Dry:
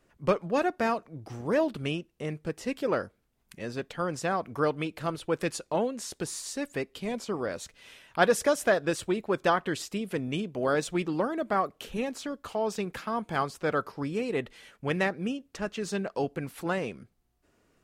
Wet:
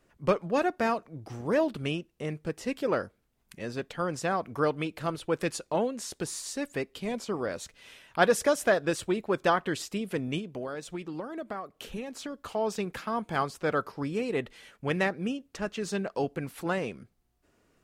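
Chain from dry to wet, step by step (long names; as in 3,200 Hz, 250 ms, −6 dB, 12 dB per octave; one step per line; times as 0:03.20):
0:10.38–0:12.38: downward compressor 12 to 1, threshold −33 dBFS, peak gain reduction 12.5 dB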